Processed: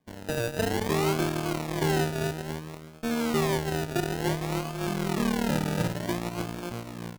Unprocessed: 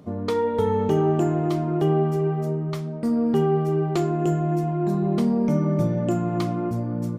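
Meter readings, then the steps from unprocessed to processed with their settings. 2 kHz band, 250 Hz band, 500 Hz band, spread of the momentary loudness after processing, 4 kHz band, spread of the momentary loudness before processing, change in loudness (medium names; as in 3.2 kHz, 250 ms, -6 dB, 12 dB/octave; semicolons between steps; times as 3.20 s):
+8.5 dB, -7.0 dB, -7.0 dB, 9 LU, +7.0 dB, 5 LU, -6.0 dB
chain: decimation with a swept rate 32×, swing 60% 0.57 Hz; Chebyshev shaper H 5 -36 dB, 6 -24 dB, 7 -17 dB, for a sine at -10 dBFS; trim -5.5 dB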